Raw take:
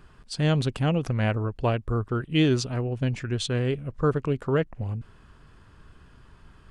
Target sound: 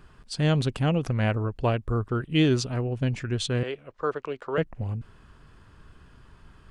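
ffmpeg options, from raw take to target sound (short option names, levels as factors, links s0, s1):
-filter_complex "[0:a]asettb=1/sr,asplit=3[s0][s1][s2];[s0]atrim=end=3.634[s3];[s1]atrim=start=3.63:end=4.58,asetpts=PTS-STARTPTS,afade=t=in:d=0.004:c=qsin,afade=t=out:st=0.946:d=0.004:c=qsin,acrossover=split=390 6600:gain=0.1 1 0.141[s4][s5][s6];[s4][s5][s6]amix=inputs=3:normalize=0[s7];[s2]atrim=start=4.576[s8];[s3][s7]acrossfade=d=0.004:c1=hsin:c2=qsin[s9];[s9][s8]acrossfade=d=0.004:c1=qsin:c2=hsin"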